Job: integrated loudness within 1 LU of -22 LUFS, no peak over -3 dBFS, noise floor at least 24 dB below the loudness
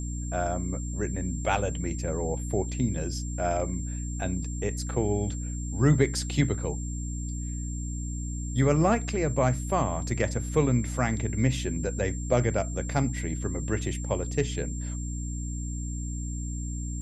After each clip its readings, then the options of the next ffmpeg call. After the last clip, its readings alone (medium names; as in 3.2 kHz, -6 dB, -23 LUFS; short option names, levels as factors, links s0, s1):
hum 60 Hz; highest harmonic 300 Hz; hum level -30 dBFS; steady tone 7.4 kHz; tone level -41 dBFS; loudness -29.0 LUFS; peak level -8.5 dBFS; loudness target -22.0 LUFS
-> -af "bandreject=f=60:t=h:w=4,bandreject=f=120:t=h:w=4,bandreject=f=180:t=h:w=4,bandreject=f=240:t=h:w=4,bandreject=f=300:t=h:w=4"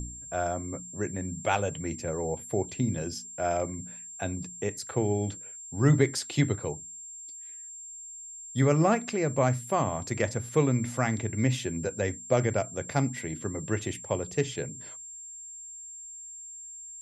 hum not found; steady tone 7.4 kHz; tone level -41 dBFS
-> -af "bandreject=f=7400:w=30"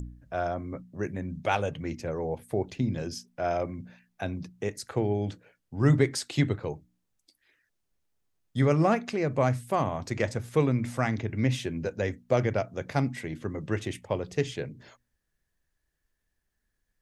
steady tone not found; loudness -29.5 LUFS; peak level -9.0 dBFS; loudness target -22.0 LUFS
-> -af "volume=2.37,alimiter=limit=0.708:level=0:latency=1"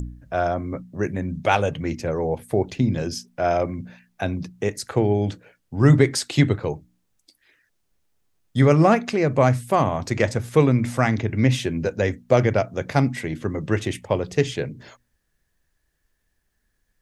loudness -22.0 LUFS; peak level -3.0 dBFS; noise floor -72 dBFS